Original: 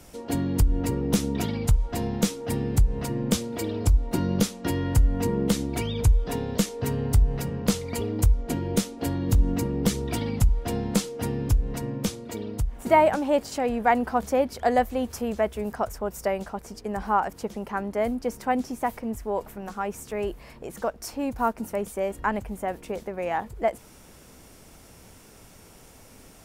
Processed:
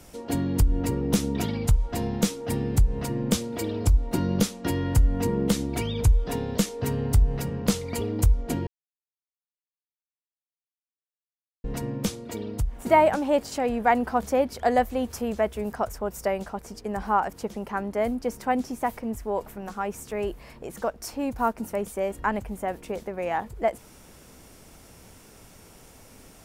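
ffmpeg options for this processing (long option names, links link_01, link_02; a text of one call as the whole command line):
ffmpeg -i in.wav -filter_complex "[0:a]asplit=3[link_01][link_02][link_03];[link_01]atrim=end=8.67,asetpts=PTS-STARTPTS,afade=type=out:start_time=8.666:duration=0.004:curve=hsin[link_04];[link_02]atrim=start=8.67:end=11.64,asetpts=PTS-STARTPTS,volume=0[link_05];[link_03]atrim=start=11.64,asetpts=PTS-STARTPTS,afade=type=in:duration=0.004:curve=hsin[link_06];[link_04][link_05][link_06]concat=n=3:v=0:a=1" out.wav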